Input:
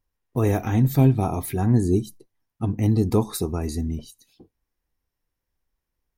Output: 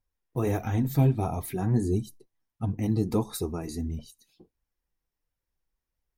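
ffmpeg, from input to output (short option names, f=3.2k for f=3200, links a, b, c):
-af "flanger=delay=1.3:depth=5:regen=-34:speed=1.5:shape=sinusoidal,volume=-1.5dB"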